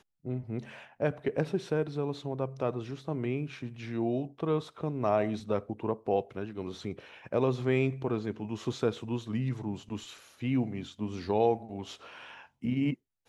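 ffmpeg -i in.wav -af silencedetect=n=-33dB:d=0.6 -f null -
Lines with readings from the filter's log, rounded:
silence_start: 11.92
silence_end: 12.64 | silence_duration: 0.72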